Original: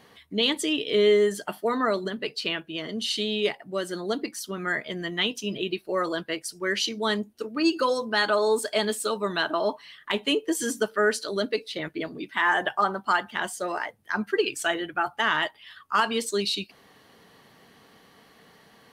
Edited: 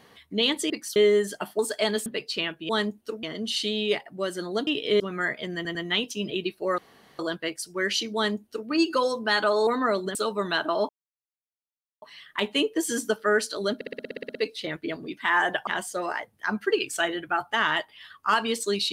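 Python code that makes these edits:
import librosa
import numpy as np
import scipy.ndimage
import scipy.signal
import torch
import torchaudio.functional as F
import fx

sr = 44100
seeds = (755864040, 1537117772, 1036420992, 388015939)

y = fx.edit(x, sr, fx.swap(start_s=0.7, length_s=0.33, other_s=4.21, other_length_s=0.26),
    fx.swap(start_s=1.66, length_s=0.48, other_s=8.53, other_length_s=0.47),
    fx.stutter(start_s=5.02, slice_s=0.1, count=3),
    fx.insert_room_tone(at_s=6.05, length_s=0.41),
    fx.duplicate(start_s=7.01, length_s=0.54, to_s=2.77),
    fx.insert_silence(at_s=9.74, length_s=1.13),
    fx.stutter(start_s=11.47, slice_s=0.06, count=11),
    fx.cut(start_s=12.79, length_s=0.54), tone=tone)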